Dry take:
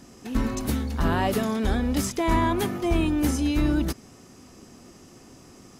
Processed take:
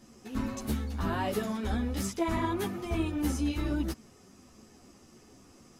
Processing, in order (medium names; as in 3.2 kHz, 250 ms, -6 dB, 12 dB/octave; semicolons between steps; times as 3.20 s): three-phase chorus; trim -4 dB